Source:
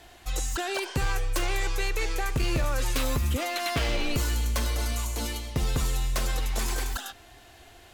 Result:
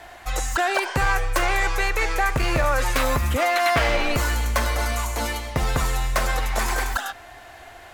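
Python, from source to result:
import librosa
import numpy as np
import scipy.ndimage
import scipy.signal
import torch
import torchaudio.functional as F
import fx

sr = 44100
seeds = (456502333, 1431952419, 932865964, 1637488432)

y = fx.band_shelf(x, sr, hz=1100.0, db=8.5, octaves=2.3)
y = F.gain(torch.from_numpy(y), 3.0).numpy()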